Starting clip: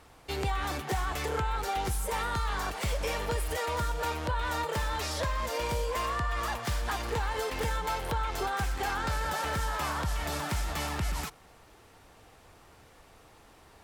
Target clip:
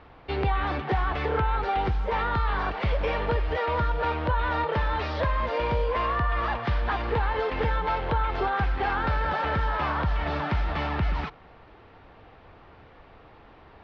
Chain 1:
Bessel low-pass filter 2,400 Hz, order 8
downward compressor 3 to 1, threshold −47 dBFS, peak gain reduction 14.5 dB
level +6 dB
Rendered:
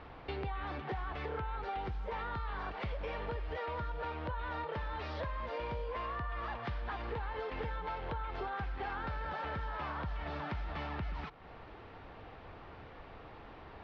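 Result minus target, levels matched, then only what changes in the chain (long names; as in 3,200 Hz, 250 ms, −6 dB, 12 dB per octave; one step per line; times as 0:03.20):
downward compressor: peak gain reduction +14.5 dB
remove: downward compressor 3 to 1, threshold −47 dBFS, peak gain reduction 14.5 dB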